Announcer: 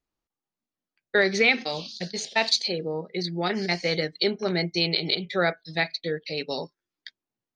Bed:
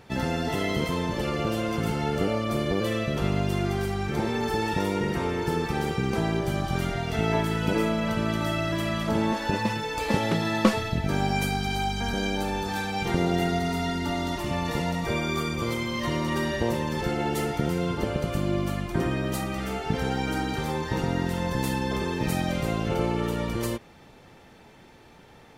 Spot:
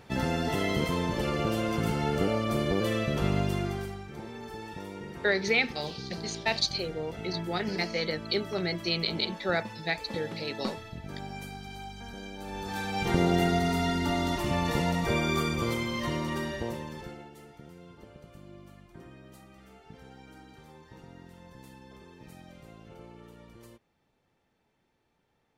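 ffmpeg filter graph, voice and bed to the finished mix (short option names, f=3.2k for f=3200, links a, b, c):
-filter_complex "[0:a]adelay=4100,volume=-5dB[a];[1:a]volume=13dB,afade=t=out:st=3.39:d=0.66:silence=0.223872,afade=t=in:st=12.38:d=0.81:silence=0.188365,afade=t=out:st=15.4:d=1.9:silence=0.0707946[b];[a][b]amix=inputs=2:normalize=0"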